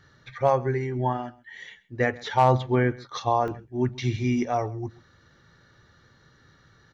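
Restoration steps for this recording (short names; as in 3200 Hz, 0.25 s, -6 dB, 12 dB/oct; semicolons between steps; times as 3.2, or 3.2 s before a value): clip repair -10 dBFS; interpolate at 3.48, 1 ms; inverse comb 0.132 s -21.5 dB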